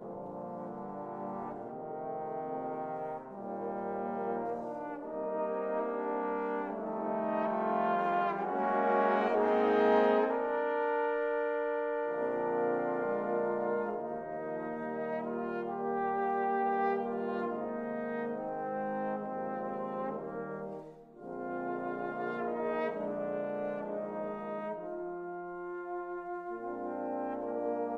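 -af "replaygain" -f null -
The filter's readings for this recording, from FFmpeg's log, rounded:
track_gain = +14.7 dB
track_peak = 0.119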